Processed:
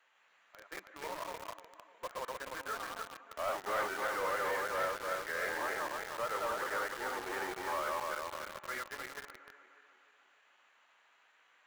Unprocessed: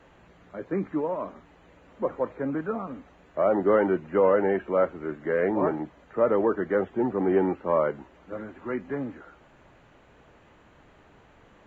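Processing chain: regenerating reverse delay 0.151 s, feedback 69%, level -1 dB; HPF 1400 Hz 12 dB/oct; in parallel at -5.5 dB: companded quantiser 2-bit; on the sum: gain -8 dB

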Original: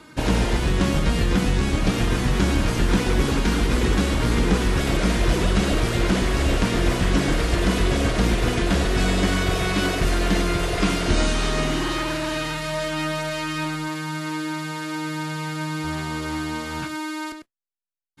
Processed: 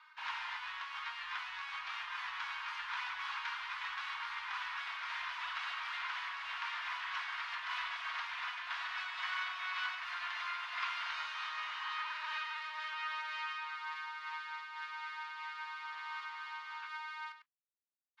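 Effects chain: elliptic high-pass 980 Hz, stop band 50 dB; air absorption 290 m; noise-modulated level, depth 55%; gain -4.5 dB

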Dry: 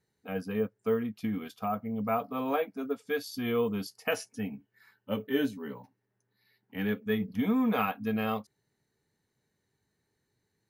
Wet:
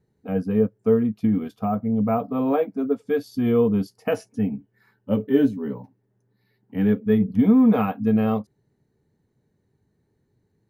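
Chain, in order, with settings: tilt shelf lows +9 dB, about 900 Hz; gain +4 dB

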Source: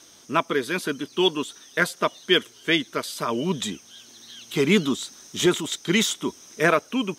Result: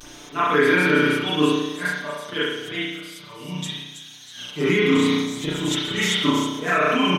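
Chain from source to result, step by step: vibrato 0.8 Hz 57 cents; auto swell 0.321 s; 2.78–4.34 passive tone stack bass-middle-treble 5-5-5; upward compressor, threshold -43 dBFS; thin delay 0.32 s, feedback 44%, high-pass 5500 Hz, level -6 dB; spring tank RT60 1.1 s, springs 33 ms, chirp 50 ms, DRR -9.5 dB; dynamic EQ 1600 Hz, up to +4 dB, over -32 dBFS, Q 0.92; limiter -11.5 dBFS, peak gain reduction 11.5 dB; comb 6.8 ms, depth 78%

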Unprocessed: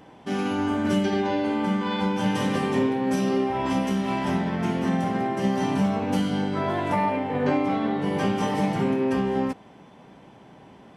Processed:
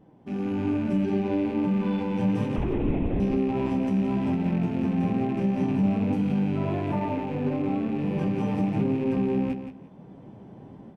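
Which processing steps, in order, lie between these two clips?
rattling part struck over -36 dBFS, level -19 dBFS; tilt shelf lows +10 dB, about 750 Hz; AGC gain up to 9 dB; limiter -6 dBFS, peak gain reduction 4.5 dB; flange 1.1 Hz, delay 5.1 ms, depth 5.4 ms, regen -42%; 2.56–3.2 LPC vocoder at 8 kHz whisper; feedback echo 0.171 s, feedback 21%, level -9 dB; gain -8 dB

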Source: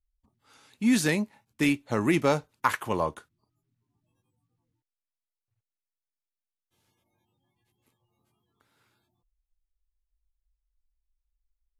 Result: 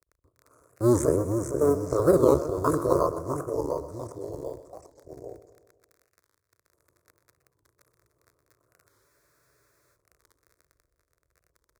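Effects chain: cycle switcher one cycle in 2, muted; inverse Chebyshev band-stop 2000–4400 Hz, stop band 50 dB; high shelf 12000 Hz -8 dB; crackle 13/s -43 dBFS; echoes that change speed 0.331 s, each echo -2 st, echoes 3, each echo -6 dB; in parallel at -11.5 dB: decimation with a swept rate 9×, swing 60% 0.52 Hz; on the sum: HPF 67 Hz; high shelf 5000 Hz -4 dB; fixed phaser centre 810 Hz, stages 6; feedback echo 0.125 s, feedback 57%, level -14 dB; spectral freeze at 8.91, 1.04 s; record warp 45 rpm, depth 160 cents; gain +8 dB

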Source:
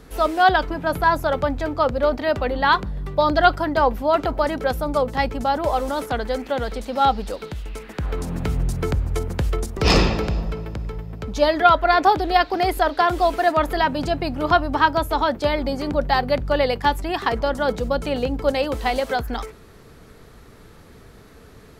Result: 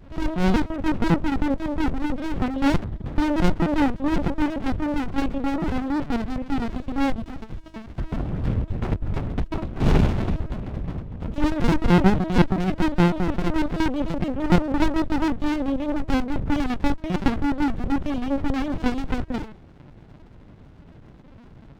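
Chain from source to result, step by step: bell 280 Hz +9 dB 0.29 oct; LPC vocoder at 8 kHz pitch kept; running maximum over 65 samples

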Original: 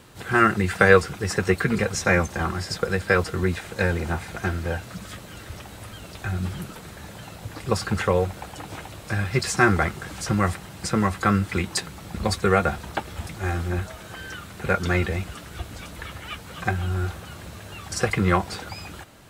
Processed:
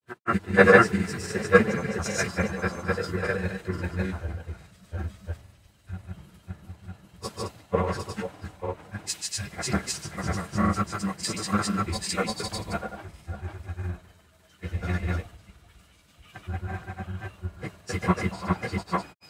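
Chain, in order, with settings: non-linear reverb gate 0.16 s flat, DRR -7 dB; grains, spray 0.554 s, pitch spread up and down by 0 st; three-band expander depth 100%; gain -12 dB

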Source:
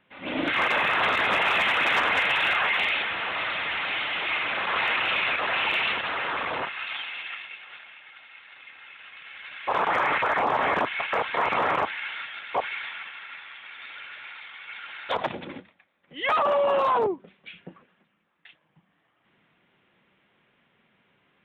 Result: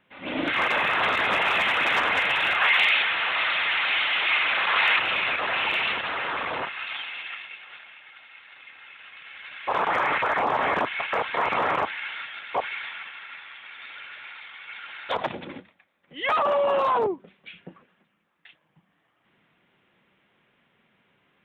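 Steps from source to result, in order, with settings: 2.61–4.99 tilt shelf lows -6 dB, about 650 Hz

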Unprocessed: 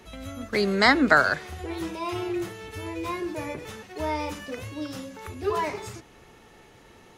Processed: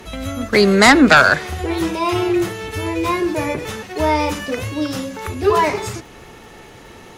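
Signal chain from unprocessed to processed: sine folder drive 7 dB, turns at -4 dBFS; crackle 64/s -42 dBFS; gain +1 dB

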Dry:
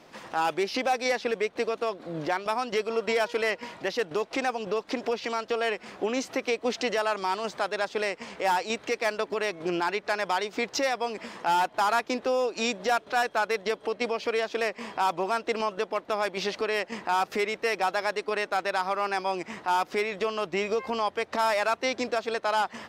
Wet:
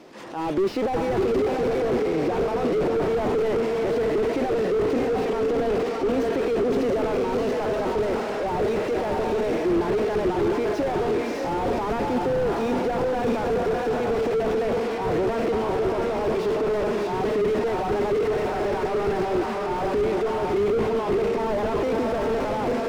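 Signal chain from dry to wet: on a send: diffused feedback echo 0.661 s, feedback 42%, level -4 dB; on the sum: transient shaper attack -6 dB, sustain +10 dB; bell 350 Hz +9.5 dB 1.3 oct; slew limiter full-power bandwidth 39 Hz; gain +1 dB

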